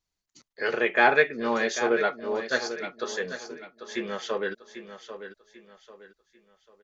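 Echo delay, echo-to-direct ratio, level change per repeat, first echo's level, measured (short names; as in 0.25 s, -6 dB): 0.793 s, -10.5 dB, -9.5 dB, -11.0 dB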